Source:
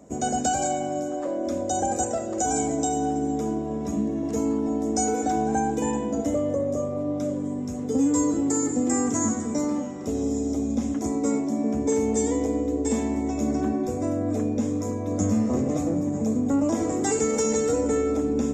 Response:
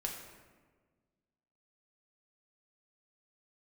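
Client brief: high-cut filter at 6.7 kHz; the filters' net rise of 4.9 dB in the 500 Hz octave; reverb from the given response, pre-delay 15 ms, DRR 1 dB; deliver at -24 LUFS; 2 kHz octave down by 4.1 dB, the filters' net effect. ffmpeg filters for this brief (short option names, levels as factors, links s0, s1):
-filter_complex "[0:a]lowpass=6700,equalizer=f=500:t=o:g=6,equalizer=f=2000:t=o:g=-6,asplit=2[s0][s1];[1:a]atrim=start_sample=2205,adelay=15[s2];[s1][s2]afir=irnorm=-1:irlink=0,volume=0.794[s3];[s0][s3]amix=inputs=2:normalize=0,volume=0.708"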